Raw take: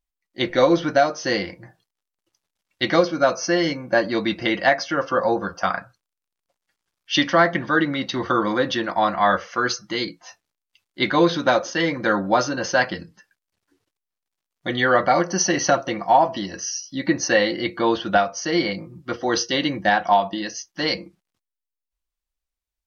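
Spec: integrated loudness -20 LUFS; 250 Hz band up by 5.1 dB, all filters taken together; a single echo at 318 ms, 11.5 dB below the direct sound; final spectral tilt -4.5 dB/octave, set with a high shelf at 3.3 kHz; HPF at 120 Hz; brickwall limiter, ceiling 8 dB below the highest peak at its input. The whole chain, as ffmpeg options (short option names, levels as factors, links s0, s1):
-af "highpass=120,equalizer=f=250:t=o:g=7.5,highshelf=f=3300:g=-4,alimiter=limit=0.266:level=0:latency=1,aecho=1:1:318:0.266,volume=1.33"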